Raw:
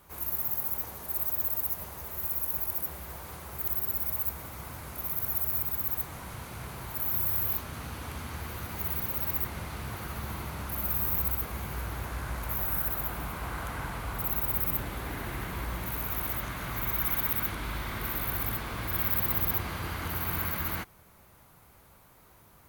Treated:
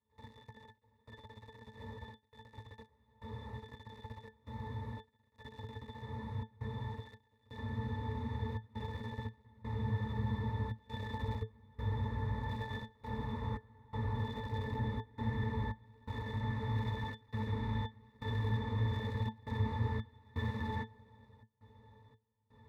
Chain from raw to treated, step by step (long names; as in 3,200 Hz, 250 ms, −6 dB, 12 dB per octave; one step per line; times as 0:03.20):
gap after every zero crossing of 0.081 ms
gate pattern ".xxx..xxxxxx" 84 BPM −24 dB
resonances in every octave A, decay 0.13 s
level +10.5 dB